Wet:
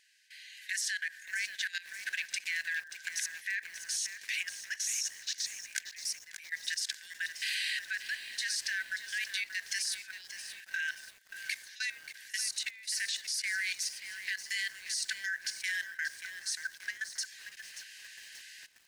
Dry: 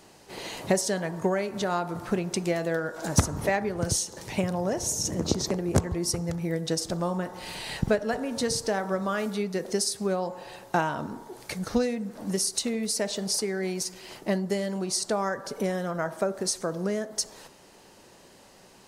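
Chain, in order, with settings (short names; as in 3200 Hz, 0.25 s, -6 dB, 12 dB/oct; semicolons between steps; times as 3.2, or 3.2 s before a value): AGC gain up to 16 dB; brick-wall FIR high-pass 1500 Hz; high shelf 4200 Hz -10 dB; pre-echo 53 ms -21 dB; level quantiser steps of 17 dB; lo-fi delay 0.582 s, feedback 55%, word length 8-bit, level -10 dB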